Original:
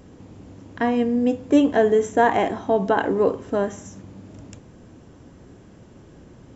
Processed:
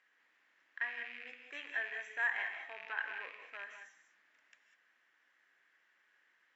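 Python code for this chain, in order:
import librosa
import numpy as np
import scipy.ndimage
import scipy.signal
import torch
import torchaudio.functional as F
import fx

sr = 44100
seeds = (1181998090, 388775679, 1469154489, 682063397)

y = fx.rattle_buzz(x, sr, strikes_db=-30.0, level_db=-24.0)
y = fx.ladder_bandpass(y, sr, hz=2000.0, resonance_pct=65)
y = fx.rev_gated(y, sr, seeds[0], gate_ms=220, shape='rising', drr_db=5.5)
y = F.gain(torch.from_numpy(y), -3.0).numpy()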